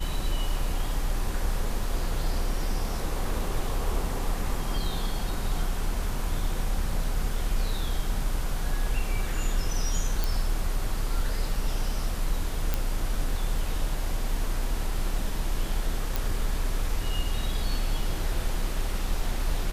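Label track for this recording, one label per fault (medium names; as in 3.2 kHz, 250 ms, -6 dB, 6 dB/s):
10.240000	10.240000	pop
12.740000	12.740000	pop
16.160000	16.160000	pop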